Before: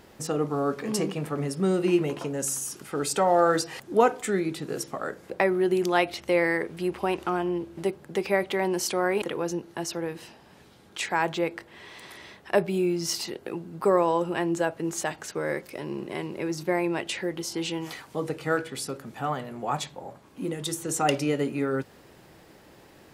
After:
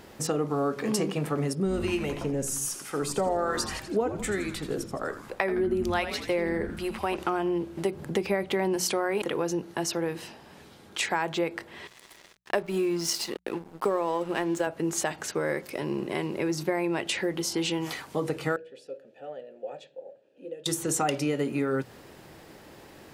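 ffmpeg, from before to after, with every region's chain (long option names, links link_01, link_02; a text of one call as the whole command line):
ffmpeg -i in.wav -filter_complex "[0:a]asettb=1/sr,asplit=3[link_01][link_02][link_03];[link_01]atrim=end=1.534[link_04];[link_02]atrim=start=1.53:end=7.16,asetpts=PTS-STARTPTS,afade=type=in:duration=0.004:curve=qsin,afade=type=out:start_time=5.626:duration=0.004:curve=qsin,acrossover=split=630[link_05][link_06];[link_05]aeval=exprs='val(0)*(1-0.7/2+0.7/2*cos(2*PI*1.2*n/s))':channel_layout=same[link_07];[link_06]aeval=exprs='val(0)*(1-0.7/2-0.7/2*cos(2*PI*1.2*n/s))':channel_layout=same[link_08];[link_07][link_08]amix=inputs=2:normalize=0,asplit=7[link_09][link_10][link_11][link_12][link_13][link_14][link_15];[link_10]adelay=82,afreqshift=-140,volume=-11dB[link_16];[link_11]adelay=164,afreqshift=-280,volume=-16.5dB[link_17];[link_12]adelay=246,afreqshift=-420,volume=-22dB[link_18];[link_13]adelay=328,afreqshift=-560,volume=-27.5dB[link_19];[link_14]adelay=410,afreqshift=-700,volume=-33.1dB[link_20];[link_15]adelay=492,afreqshift=-840,volume=-38.6dB[link_21];[link_09][link_16][link_17][link_18][link_19][link_20][link_21]amix=inputs=7:normalize=0,atrim=end_sample=248283[link_22];[link_03]atrim=start=7.156[link_23];[link_04][link_22]acrossfade=duration=0.004:curve1=hsin:curve2=qsin[link_24];[link_24][link_23]acrossfade=duration=0.004:curve1=qsin:curve2=hsin,asettb=1/sr,asplit=3[link_25][link_26][link_27];[link_25]atrim=end=7.924[link_28];[link_26]atrim=start=7.92:end=8.76,asetpts=PTS-STARTPTS,afade=type=in:duration=0.004:curve=qsin,afade=type=out:start_time=0.836:duration=0.004:curve=qsin,lowshelf=frequency=230:gain=9,acompressor=mode=upward:threshold=-36dB:ratio=2.5:attack=3.2:release=140:knee=2.83:detection=peak[link_29];[link_27]atrim=start=8.756[link_30];[link_28][link_29]acrossfade=duration=0.004:curve1=hsin:curve2=qsin[link_31];[link_31][link_30]acrossfade=duration=0.004:curve1=qsin:curve2=hsin,asettb=1/sr,asplit=3[link_32][link_33][link_34];[link_32]atrim=end=11.874[link_35];[link_33]atrim=start=11.87:end=14.67,asetpts=PTS-STARTPTS,afade=type=in:duration=0.004:curve=qsin,afade=type=out:start_time=2.796:duration=0.004:curve=qsin,highpass=180,aeval=exprs='sgn(val(0))*max(abs(val(0))-0.00668,0)':channel_layout=same[link_36];[link_34]atrim=start=14.666[link_37];[link_35][link_36]acrossfade=duration=0.004:curve1=hsin:curve2=qsin[link_38];[link_38][link_37]acrossfade=duration=0.004:curve1=qsin:curve2=hsin,asettb=1/sr,asplit=3[link_39][link_40][link_41];[link_39]atrim=end=18.564[link_42];[link_40]atrim=start=18.56:end=20.66,asetpts=PTS-STARTPTS,afade=type=in:duration=0.004:curve=qsin,afade=type=out:start_time=2.096:duration=0.004:curve=qsin,asplit=3[link_43][link_44][link_45];[link_43]bandpass=frequency=530:width_type=q:width=8,volume=0dB[link_46];[link_44]bandpass=frequency=1840:width_type=q:width=8,volume=-6dB[link_47];[link_45]bandpass=frequency=2480:width_type=q:width=8,volume=-9dB[link_48];[link_46][link_47][link_48]amix=inputs=3:normalize=0,equalizer=frequency=2000:width=2.7:gain=-14.5[link_49];[link_41]atrim=start=20.656[link_50];[link_42][link_49]acrossfade=duration=0.004:curve1=hsin:curve2=qsin[link_51];[link_51][link_50]acrossfade=duration=0.004:curve1=qsin:curve2=hsin,bandreject=frequency=60:width_type=h:width=6,bandreject=frequency=120:width_type=h:width=6,bandreject=frequency=180:width_type=h:width=6,acompressor=threshold=-27dB:ratio=5,volume=3.5dB" out.wav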